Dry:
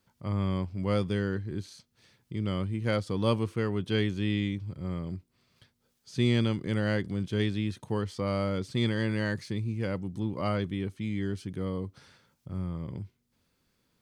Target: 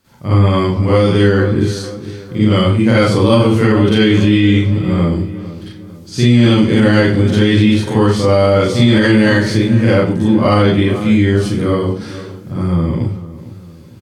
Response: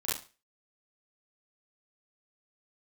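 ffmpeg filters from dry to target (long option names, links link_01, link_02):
-filter_complex "[0:a]acontrast=78,asplit=2[link_01][link_02];[link_02]adelay=453,lowpass=frequency=1900:poles=1,volume=-15dB,asplit=2[link_03][link_04];[link_04]adelay=453,lowpass=frequency=1900:poles=1,volume=0.44,asplit=2[link_05][link_06];[link_06]adelay=453,lowpass=frequency=1900:poles=1,volume=0.44,asplit=2[link_07][link_08];[link_08]adelay=453,lowpass=frequency=1900:poles=1,volume=0.44[link_09];[link_01][link_03][link_05][link_07][link_09]amix=inputs=5:normalize=0[link_10];[1:a]atrim=start_sample=2205,asetrate=34398,aresample=44100[link_11];[link_10][link_11]afir=irnorm=-1:irlink=0,alimiter=level_in=8dB:limit=-1dB:release=50:level=0:latency=1,volume=-1dB"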